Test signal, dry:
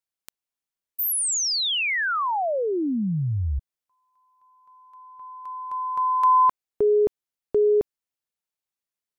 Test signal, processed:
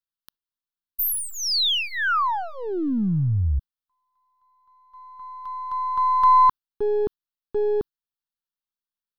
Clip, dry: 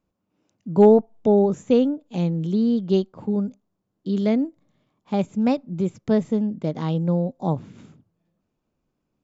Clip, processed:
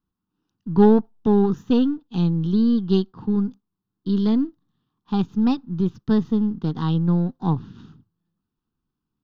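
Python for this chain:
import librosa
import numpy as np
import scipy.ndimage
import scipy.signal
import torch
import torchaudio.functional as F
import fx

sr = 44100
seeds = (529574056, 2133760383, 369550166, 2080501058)

y = np.where(x < 0.0, 10.0 ** (-3.0 / 20.0) * x, x)
y = fx.gate_hold(y, sr, open_db=-46.0, close_db=-52.0, hold_ms=19.0, range_db=-7, attack_ms=6.8, release_ms=40.0)
y = fx.fixed_phaser(y, sr, hz=2200.0, stages=6)
y = F.gain(torch.from_numpy(y), 5.0).numpy()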